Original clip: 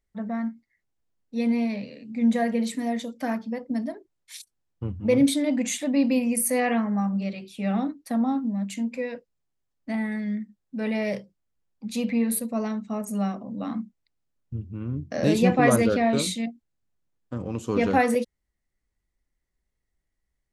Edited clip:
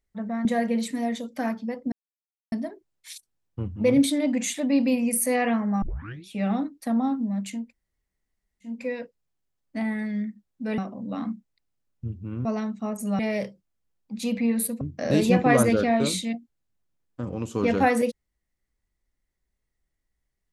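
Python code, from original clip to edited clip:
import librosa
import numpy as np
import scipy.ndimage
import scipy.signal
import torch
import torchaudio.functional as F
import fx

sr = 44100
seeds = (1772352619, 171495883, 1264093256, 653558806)

y = fx.edit(x, sr, fx.cut(start_s=0.45, length_s=1.84),
    fx.insert_silence(at_s=3.76, length_s=0.6),
    fx.tape_start(start_s=7.06, length_s=0.45),
    fx.insert_room_tone(at_s=8.85, length_s=1.11, crossfade_s=0.24),
    fx.swap(start_s=10.91, length_s=1.62, other_s=13.27, other_length_s=1.67), tone=tone)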